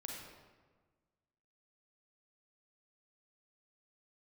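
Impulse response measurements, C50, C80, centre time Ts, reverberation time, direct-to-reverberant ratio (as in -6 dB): 0.5 dB, 2.5 dB, 75 ms, 1.4 s, -1.5 dB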